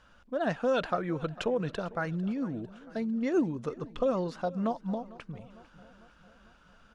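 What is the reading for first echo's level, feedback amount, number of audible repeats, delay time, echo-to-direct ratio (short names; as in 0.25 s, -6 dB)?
-20.0 dB, 57%, 4, 0.45 s, -18.5 dB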